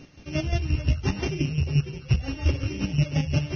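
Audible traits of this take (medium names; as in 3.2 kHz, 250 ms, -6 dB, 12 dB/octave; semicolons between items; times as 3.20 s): a buzz of ramps at a fixed pitch in blocks of 16 samples; chopped level 5.7 Hz, depth 65%, duty 30%; a quantiser's noise floor 10-bit, dither none; Vorbis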